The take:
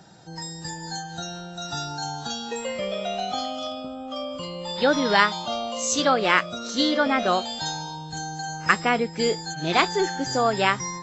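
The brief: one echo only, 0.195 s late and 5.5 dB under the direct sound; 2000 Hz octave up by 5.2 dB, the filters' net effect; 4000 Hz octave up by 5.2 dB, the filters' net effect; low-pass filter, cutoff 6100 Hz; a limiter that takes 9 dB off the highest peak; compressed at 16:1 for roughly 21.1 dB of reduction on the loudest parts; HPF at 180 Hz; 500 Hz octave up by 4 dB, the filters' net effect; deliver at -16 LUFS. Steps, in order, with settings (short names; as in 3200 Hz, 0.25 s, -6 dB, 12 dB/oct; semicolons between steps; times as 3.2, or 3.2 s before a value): HPF 180 Hz; LPF 6100 Hz; bell 500 Hz +4.5 dB; bell 2000 Hz +5 dB; bell 4000 Hz +5.5 dB; compressor 16:1, threshold -30 dBFS; limiter -25.5 dBFS; echo 0.195 s -5.5 dB; gain +17.5 dB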